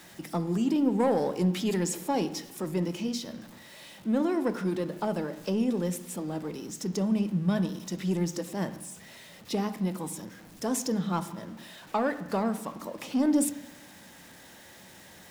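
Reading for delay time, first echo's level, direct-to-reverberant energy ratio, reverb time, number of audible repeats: none, none, 10.5 dB, 1.1 s, none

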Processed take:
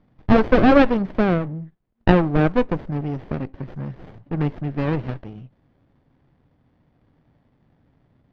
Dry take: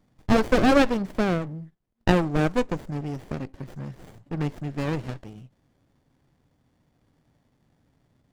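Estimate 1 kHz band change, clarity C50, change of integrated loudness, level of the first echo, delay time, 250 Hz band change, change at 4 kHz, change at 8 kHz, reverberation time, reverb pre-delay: +4.5 dB, none, +4.5 dB, none, none, +5.0 dB, -1.0 dB, under -10 dB, none, none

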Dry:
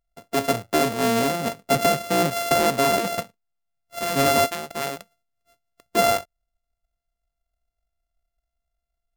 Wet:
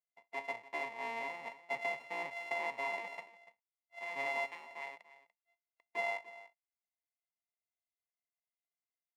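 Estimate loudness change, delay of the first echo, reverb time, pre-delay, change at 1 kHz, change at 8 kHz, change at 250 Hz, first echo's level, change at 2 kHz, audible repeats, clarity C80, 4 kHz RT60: -17.5 dB, 0.291 s, none, none, -18.0 dB, -33.0 dB, -31.5 dB, -16.5 dB, -9.5 dB, 1, none, none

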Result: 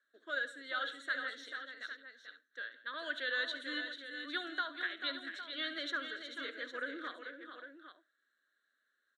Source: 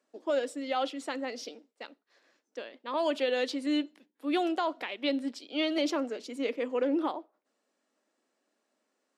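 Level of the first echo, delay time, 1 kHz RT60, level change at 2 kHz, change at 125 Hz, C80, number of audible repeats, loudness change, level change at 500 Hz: -15.5 dB, 70 ms, none, +4.0 dB, n/a, none, 5, -7.5 dB, -16.0 dB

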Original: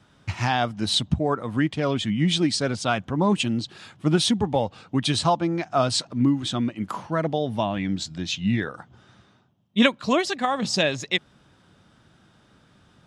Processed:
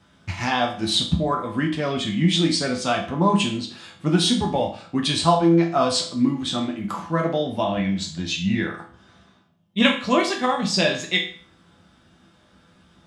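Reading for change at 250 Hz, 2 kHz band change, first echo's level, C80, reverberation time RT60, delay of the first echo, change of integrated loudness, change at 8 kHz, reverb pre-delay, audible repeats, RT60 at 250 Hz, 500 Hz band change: +2.0 dB, +2.0 dB, none, 13.0 dB, 0.45 s, none, +2.0 dB, +1.5 dB, 6 ms, none, 0.45 s, +2.0 dB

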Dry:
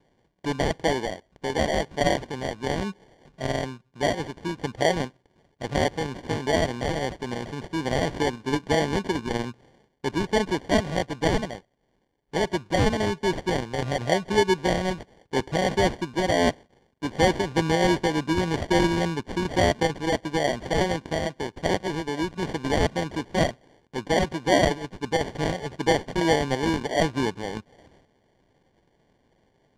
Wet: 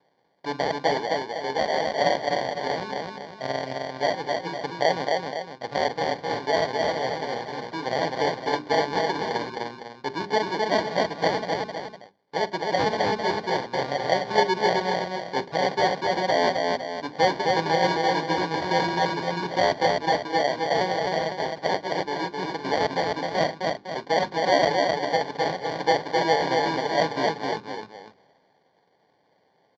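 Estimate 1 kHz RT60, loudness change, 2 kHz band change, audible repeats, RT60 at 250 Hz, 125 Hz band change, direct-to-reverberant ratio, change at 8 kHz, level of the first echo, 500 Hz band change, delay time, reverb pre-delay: none, +0.5 dB, +1.5 dB, 3, none, -7.5 dB, none, -5.0 dB, -18.5 dB, +1.0 dB, 44 ms, none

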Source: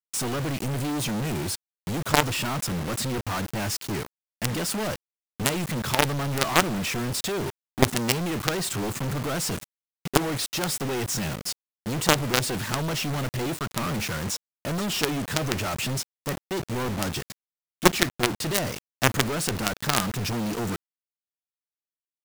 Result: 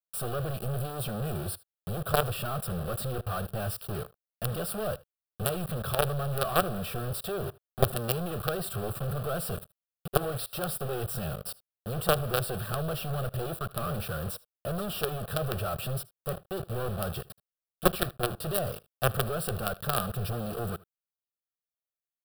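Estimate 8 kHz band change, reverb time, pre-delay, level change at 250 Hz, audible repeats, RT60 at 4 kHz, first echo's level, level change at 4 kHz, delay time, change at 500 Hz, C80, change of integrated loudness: -10.0 dB, none, none, -8.5 dB, 1, none, -22.0 dB, -10.0 dB, 77 ms, -2.0 dB, none, -5.5 dB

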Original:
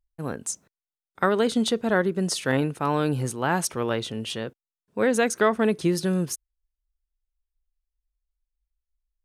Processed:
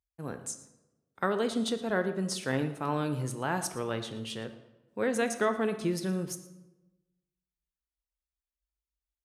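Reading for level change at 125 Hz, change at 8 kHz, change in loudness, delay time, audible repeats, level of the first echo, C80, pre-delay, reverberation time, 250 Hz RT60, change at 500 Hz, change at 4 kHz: -6.5 dB, -7.0 dB, -7.0 dB, 0.116 s, 1, -19.0 dB, 12.5 dB, 12 ms, 1.0 s, 1.2 s, -7.0 dB, -7.0 dB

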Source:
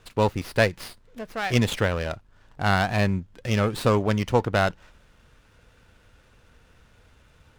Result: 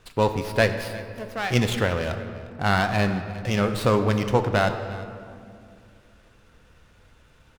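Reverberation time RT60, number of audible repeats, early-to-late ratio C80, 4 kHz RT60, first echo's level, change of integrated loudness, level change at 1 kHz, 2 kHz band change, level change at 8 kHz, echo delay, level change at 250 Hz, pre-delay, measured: 2.3 s, 1, 9.5 dB, 1.3 s, -19.0 dB, 0.0 dB, +1.0 dB, +1.0 dB, +0.5 dB, 0.352 s, +1.0 dB, 6 ms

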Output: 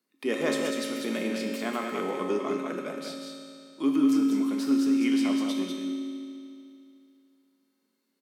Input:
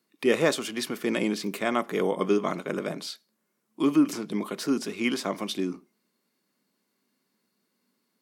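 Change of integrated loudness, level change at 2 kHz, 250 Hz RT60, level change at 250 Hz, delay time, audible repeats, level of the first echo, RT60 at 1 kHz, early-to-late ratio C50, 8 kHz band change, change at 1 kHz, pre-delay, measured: 0.0 dB, -3.5 dB, 2.6 s, +2.5 dB, 0.195 s, 1, -5.0 dB, 2.6 s, 0.5 dB, -3.0 dB, -3.0 dB, 4 ms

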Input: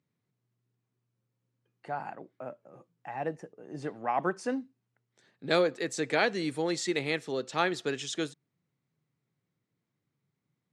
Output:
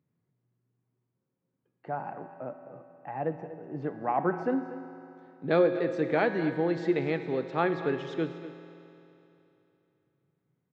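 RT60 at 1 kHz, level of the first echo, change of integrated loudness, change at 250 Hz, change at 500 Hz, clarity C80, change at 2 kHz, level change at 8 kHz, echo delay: 3.0 s, -15.0 dB, +1.5 dB, +4.0 dB, +3.5 dB, 8.5 dB, -2.5 dB, under -20 dB, 0.24 s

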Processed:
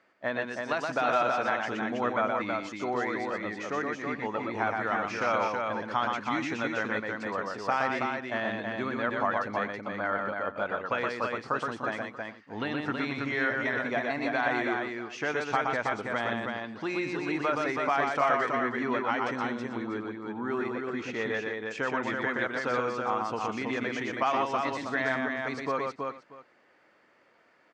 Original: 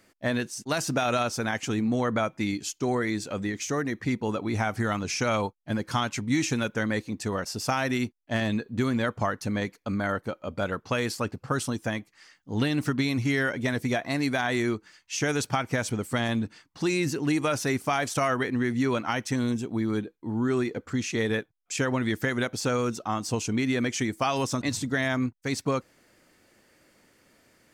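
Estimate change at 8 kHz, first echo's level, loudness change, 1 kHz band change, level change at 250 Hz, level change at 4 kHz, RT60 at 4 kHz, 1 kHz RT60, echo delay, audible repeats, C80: -16.5 dB, -3.5 dB, -2.0 dB, +2.5 dB, -6.5 dB, -7.0 dB, none, none, 0.121 s, 4, none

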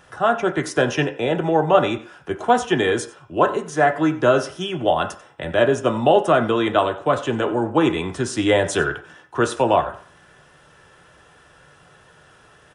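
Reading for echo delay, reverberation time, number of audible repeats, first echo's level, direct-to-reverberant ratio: 92 ms, 0.45 s, 1, -19.0 dB, 4.5 dB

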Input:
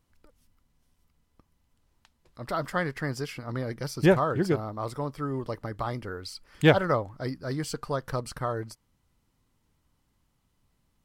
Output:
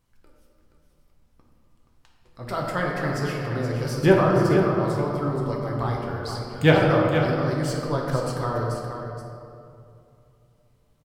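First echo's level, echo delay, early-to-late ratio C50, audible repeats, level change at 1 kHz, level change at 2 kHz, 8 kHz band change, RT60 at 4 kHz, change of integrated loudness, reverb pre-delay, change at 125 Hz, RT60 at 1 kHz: -8.0 dB, 0.475 s, 0.0 dB, 1, +5.0 dB, +4.5 dB, +2.5 dB, 1.5 s, +5.5 dB, 6 ms, +7.0 dB, 2.4 s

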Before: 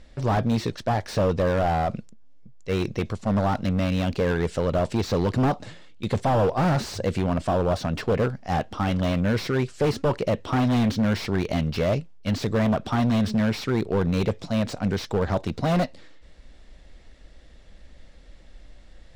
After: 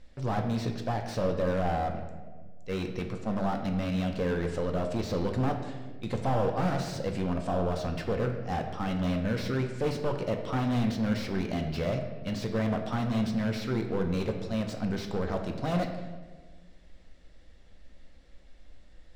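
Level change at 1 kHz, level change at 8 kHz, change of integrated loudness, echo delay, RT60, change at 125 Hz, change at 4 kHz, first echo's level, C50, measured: -6.5 dB, -7.0 dB, -6.5 dB, none, 1.5 s, -6.5 dB, -7.0 dB, none, 7.0 dB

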